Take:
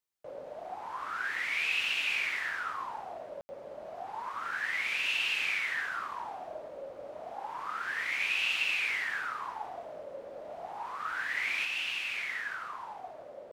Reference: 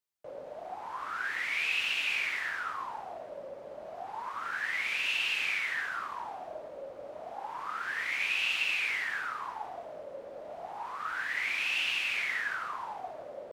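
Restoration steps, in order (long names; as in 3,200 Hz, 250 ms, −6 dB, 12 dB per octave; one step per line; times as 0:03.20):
ambience match 0:03.41–0:03.49
level 0 dB, from 0:11.65 +3.5 dB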